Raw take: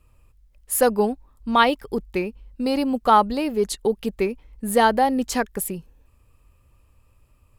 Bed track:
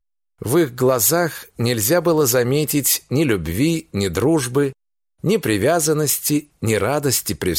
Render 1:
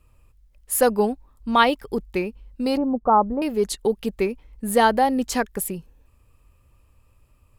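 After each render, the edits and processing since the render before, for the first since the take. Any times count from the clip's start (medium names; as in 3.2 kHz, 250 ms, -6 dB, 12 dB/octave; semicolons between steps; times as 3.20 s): 2.77–3.42 s: low-pass 1.1 kHz 24 dB/octave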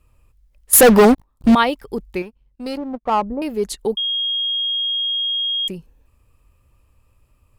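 0.73–1.55 s: waveshaping leveller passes 5; 2.22–3.22 s: power-law waveshaper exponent 1.4; 3.97–5.68 s: bleep 3.26 kHz -18.5 dBFS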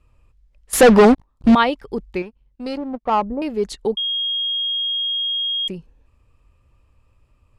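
Bessel low-pass 5.4 kHz, order 2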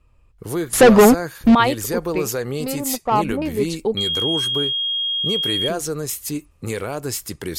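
add bed track -8 dB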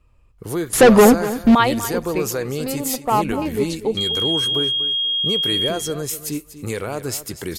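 feedback delay 242 ms, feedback 18%, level -14 dB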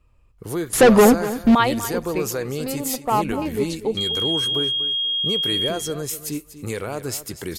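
trim -2 dB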